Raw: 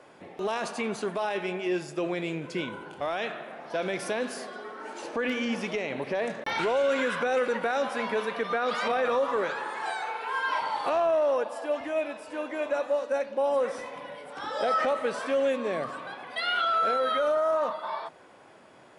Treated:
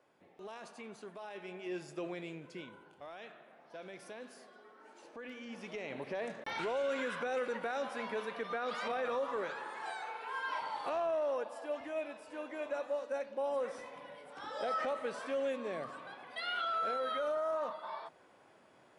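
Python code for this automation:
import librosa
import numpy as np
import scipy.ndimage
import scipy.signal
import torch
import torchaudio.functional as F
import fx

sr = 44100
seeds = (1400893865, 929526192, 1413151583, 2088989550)

y = fx.gain(x, sr, db=fx.line((1.22, -17.5), (1.91, -9.5), (3.0, -18.0), (5.44, -18.0), (5.89, -9.5)))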